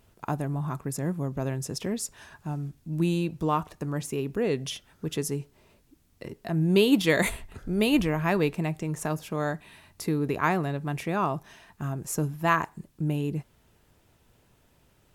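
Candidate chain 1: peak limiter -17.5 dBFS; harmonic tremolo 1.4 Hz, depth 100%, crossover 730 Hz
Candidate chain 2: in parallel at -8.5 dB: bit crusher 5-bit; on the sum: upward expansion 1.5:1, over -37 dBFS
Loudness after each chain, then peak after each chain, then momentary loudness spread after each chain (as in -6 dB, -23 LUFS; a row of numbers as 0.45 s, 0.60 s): -35.0 LUFS, -29.0 LUFS; -18.5 dBFS, -6.0 dBFS; 13 LU, 17 LU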